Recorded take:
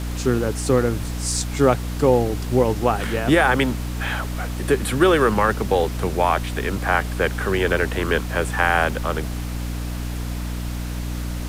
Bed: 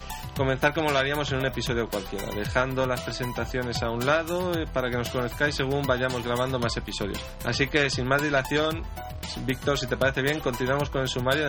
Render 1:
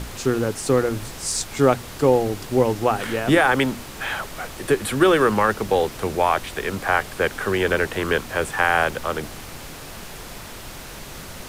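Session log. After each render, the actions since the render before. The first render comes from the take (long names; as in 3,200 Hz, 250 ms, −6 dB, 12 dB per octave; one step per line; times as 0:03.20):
mains-hum notches 60/120/180/240/300 Hz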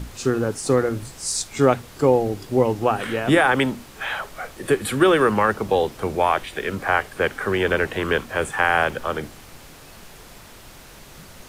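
noise reduction from a noise print 7 dB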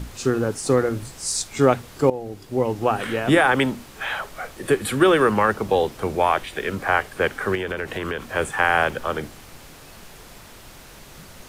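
0:02.10–0:02.96: fade in, from −15 dB
0:07.55–0:08.27: downward compressor, threshold −23 dBFS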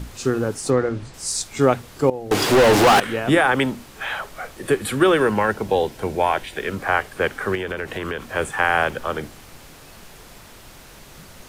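0:00.70–0:01.14: high-frequency loss of the air 98 metres
0:02.31–0:03.00: mid-hump overdrive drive 39 dB, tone 5,000 Hz, clips at −6.5 dBFS
0:05.19–0:06.56: Butterworth band-reject 1,200 Hz, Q 6.5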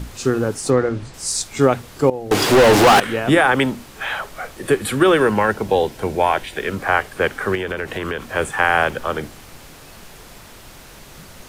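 level +2.5 dB
brickwall limiter −3 dBFS, peak gain reduction 2.5 dB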